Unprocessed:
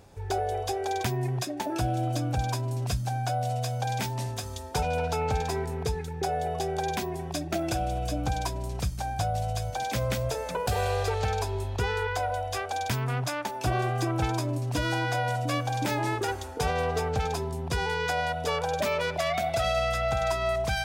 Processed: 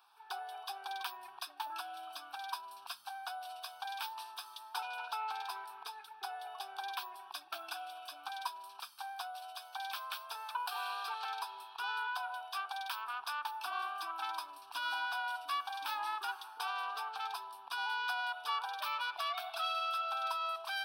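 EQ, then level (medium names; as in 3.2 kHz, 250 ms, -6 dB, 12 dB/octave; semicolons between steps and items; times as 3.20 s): ladder high-pass 780 Hz, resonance 30%; static phaser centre 2 kHz, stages 6; +2.5 dB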